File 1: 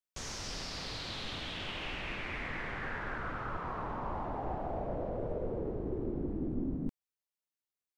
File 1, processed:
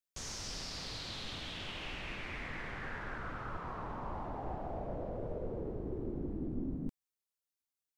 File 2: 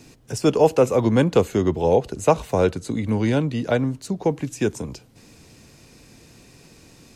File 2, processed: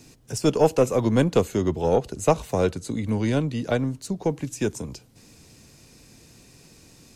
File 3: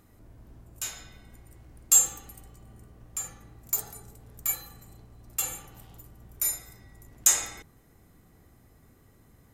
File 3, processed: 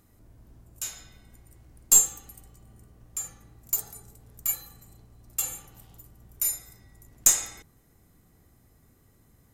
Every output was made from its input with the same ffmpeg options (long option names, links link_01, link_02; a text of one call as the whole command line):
ffmpeg -i in.wav -af "bass=frequency=250:gain=2,treble=frequency=4000:gain=5,aeval=exprs='0.944*(cos(1*acos(clip(val(0)/0.944,-1,1)))-cos(1*PI/2))+0.133*(cos(2*acos(clip(val(0)/0.944,-1,1)))-cos(2*PI/2))+0.0075*(cos(6*acos(clip(val(0)/0.944,-1,1)))-cos(6*PI/2))+0.0168*(cos(7*acos(clip(val(0)/0.944,-1,1)))-cos(7*PI/2))':channel_layout=same,volume=-3dB" out.wav